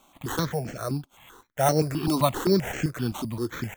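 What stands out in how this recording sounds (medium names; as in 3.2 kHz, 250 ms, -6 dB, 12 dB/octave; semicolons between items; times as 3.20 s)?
aliases and images of a low sample rate 4.9 kHz, jitter 0%; notches that jump at a steady rate 7.7 Hz 470–3700 Hz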